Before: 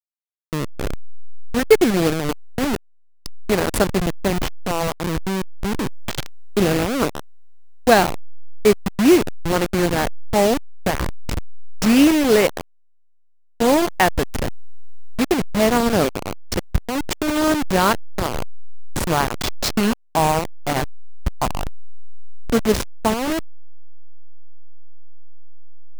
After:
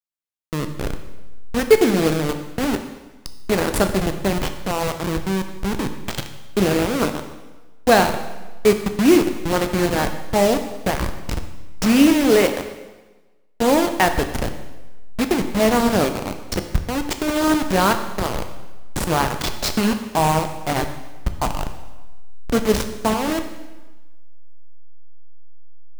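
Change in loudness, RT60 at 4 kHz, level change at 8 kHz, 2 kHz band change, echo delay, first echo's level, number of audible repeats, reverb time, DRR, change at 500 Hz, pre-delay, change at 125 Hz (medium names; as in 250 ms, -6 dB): -0.5 dB, 1.1 s, 0.0 dB, -0.5 dB, no echo, no echo, no echo, 1.2 s, 7.0 dB, 0.0 dB, 6 ms, 0.0 dB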